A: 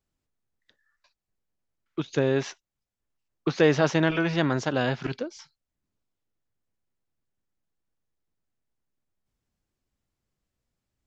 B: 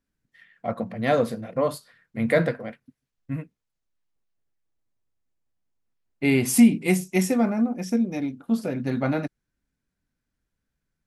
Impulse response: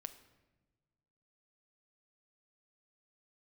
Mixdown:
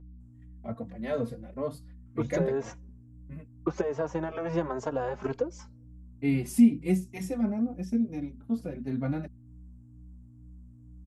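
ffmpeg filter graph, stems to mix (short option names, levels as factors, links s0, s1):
-filter_complex "[0:a]equalizer=f=125:t=o:w=1:g=-5,equalizer=f=250:t=o:w=1:g=-3,equalizer=f=500:t=o:w=1:g=8,equalizer=f=1000:t=o:w=1:g=10,equalizer=f=4000:t=o:w=1:g=-11,equalizer=f=8000:t=o:w=1:g=12,acompressor=threshold=0.0562:ratio=12,adelay=200,volume=0.631,asplit=2[s0][s1];[s1]volume=0.158[s2];[1:a]agate=range=0.126:threshold=0.00316:ratio=16:detection=peak,volume=0.266[s3];[2:a]atrim=start_sample=2205[s4];[s2][s4]afir=irnorm=-1:irlink=0[s5];[s0][s3][s5]amix=inputs=3:normalize=0,lowshelf=f=480:g=10,aeval=exprs='val(0)+0.00562*(sin(2*PI*60*n/s)+sin(2*PI*2*60*n/s)/2+sin(2*PI*3*60*n/s)/3+sin(2*PI*4*60*n/s)/4+sin(2*PI*5*60*n/s)/5)':c=same,asplit=2[s6][s7];[s7]adelay=3.7,afreqshift=2.2[s8];[s6][s8]amix=inputs=2:normalize=1"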